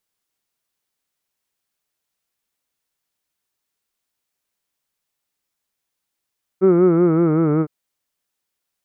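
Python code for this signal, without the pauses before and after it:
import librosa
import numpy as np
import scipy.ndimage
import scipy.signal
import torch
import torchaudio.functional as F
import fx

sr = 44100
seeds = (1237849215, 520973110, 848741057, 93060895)

y = fx.formant_vowel(sr, seeds[0], length_s=1.06, hz=184.0, glide_st=-3.5, vibrato_hz=5.3, vibrato_st=0.9, f1_hz=380.0, f2_hz=1300.0, f3_hz=2200.0)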